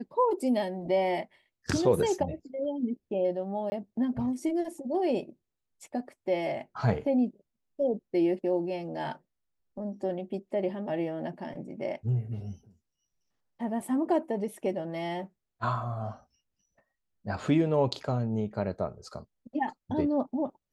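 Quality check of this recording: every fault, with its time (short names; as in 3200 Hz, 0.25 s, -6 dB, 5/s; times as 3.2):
3.7–3.72 gap 20 ms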